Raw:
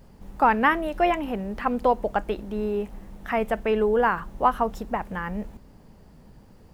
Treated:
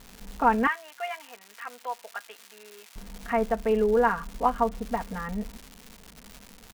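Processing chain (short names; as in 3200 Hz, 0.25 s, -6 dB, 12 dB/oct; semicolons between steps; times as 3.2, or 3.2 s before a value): LPF 2600 Hz; comb 4.3 ms, depth 83%; crackle 370/s -29 dBFS; 0.67–2.96 HPF 1400 Hz 12 dB/oct; gain -5 dB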